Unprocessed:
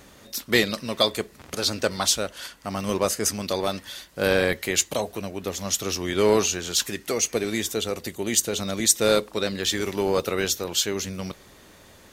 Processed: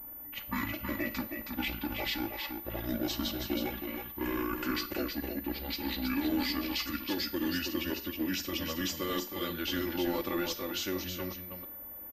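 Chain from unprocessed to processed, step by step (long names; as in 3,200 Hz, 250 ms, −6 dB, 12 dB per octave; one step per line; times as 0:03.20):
pitch glide at a constant tempo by −11.5 semitones ending unshifted
low-pass that shuts in the quiet parts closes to 1,400 Hz, open at −19.5 dBFS
comb filter 3.5 ms, depth 94%
brickwall limiter −15.5 dBFS, peak gain reduction 13 dB
single-tap delay 320 ms −6 dB
four-comb reverb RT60 0.45 s, combs from 32 ms, DRR 14 dB
switching amplifier with a slow clock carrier 14,000 Hz
level −8 dB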